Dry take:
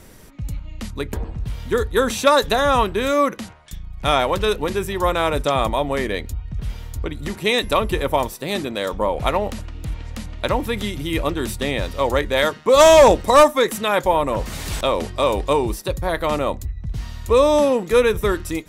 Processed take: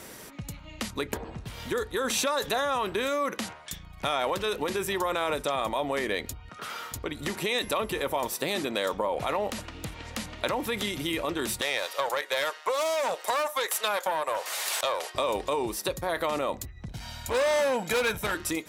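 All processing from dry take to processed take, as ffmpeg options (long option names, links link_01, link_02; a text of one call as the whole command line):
ffmpeg -i in.wav -filter_complex "[0:a]asettb=1/sr,asplit=3[link_01][link_02][link_03];[link_01]atrim=end=6.494[link_04];[link_02]atrim=start=6.49:end=6.92,asetpts=PTS-STARTPTS,afade=type=in:duration=0.004:curve=qsin,afade=type=out:start_time=0.426:duration=0.004:curve=qsin,highpass=370,equalizer=frequency=1300:width_type=o:width=0.39:gain=15[link_05];[link_03]atrim=start=6.916[link_06];[link_04][link_05]acrossfade=duration=0.004:curve1=hsin:curve2=qsin[link_07];[link_07][link_06]acrossfade=duration=0.004:curve1=qsin:curve2=hsin,asettb=1/sr,asplit=3[link_08][link_09][link_10];[link_08]atrim=end=11.614[link_11];[link_09]atrim=start=11.61:end=15.15,asetpts=PTS-STARTPTS,afade=type=in:duration=0.004:curve=qsin,afade=type=out:start_time=3.536:duration=0.004:curve=qsin,highpass=frequency=540:width=0.5412,highpass=frequency=540:width=1.3066,equalizer=frequency=12000:width_type=o:width=0.65:gain=3.5,aeval=exprs='(tanh(5.01*val(0)+0.65)-tanh(0.65))/5.01':channel_layout=same[link_12];[link_10]atrim=start=15.146[link_13];[link_11][link_12]acrossfade=duration=0.004:curve1=hsin:curve2=qsin[link_14];[link_14][link_13]acrossfade=duration=0.004:curve1=qsin:curve2=hsin,asettb=1/sr,asplit=3[link_15][link_16][link_17];[link_15]atrim=end=16.884[link_18];[link_16]atrim=start=16.88:end=18.35,asetpts=PTS-STARTPTS,afade=type=in:duration=0.004:curve=qsin,afade=type=out:start_time=1.466:duration=0.004:curve=qsin,aecho=1:1:1.3:0.75,atrim=end_sample=64827,volume=17dB,asoftclip=hard,volume=-17dB[link_19];[link_17]atrim=start=18.346[link_20];[link_18][link_19]acrossfade=duration=0.004:curve1=hsin:curve2=qsin[link_21];[link_21][link_20]acrossfade=duration=0.004:curve1=qsin:curve2=hsin,alimiter=limit=-15.5dB:level=0:latency=1:release=15,acompressor=threshold=-27dB:ratio=6,highpass=frequency=410:poles=1,volume=4.5dB" out.wav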